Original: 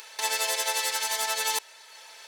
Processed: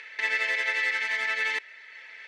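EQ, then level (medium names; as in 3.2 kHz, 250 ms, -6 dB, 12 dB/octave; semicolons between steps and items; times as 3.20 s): resonant low-pass 2 kHz, resonance Q 5.8; peaking EQ 880 Hz -15 dB 1.5 oct; +2.5 dB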